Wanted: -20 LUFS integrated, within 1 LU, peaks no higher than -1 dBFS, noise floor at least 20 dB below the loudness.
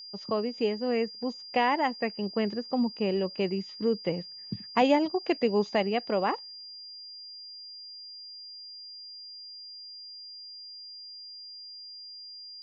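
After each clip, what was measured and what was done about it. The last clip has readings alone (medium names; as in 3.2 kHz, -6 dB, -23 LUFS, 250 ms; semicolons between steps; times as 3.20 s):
steady tone 4.8 kHz; tone level -42 dBFS; loudness -29.0 LUFS; peak level -11.0 dBFS; loudness target -20.0 LUFS
-> band-stop 4.8 kHz, Q 30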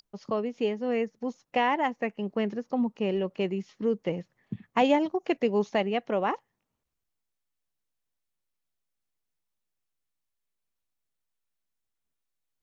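steady tone not found; loudness -29.0 LUFS; peak level -11.5 dBFS; loudness target -20.0 LUFS
-> trim +9 dB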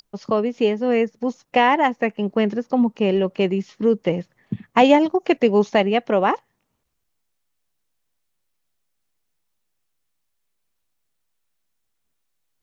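loudness -20.0 LUFS; peak level -2.5 dBFS; noise floor -74 dBFS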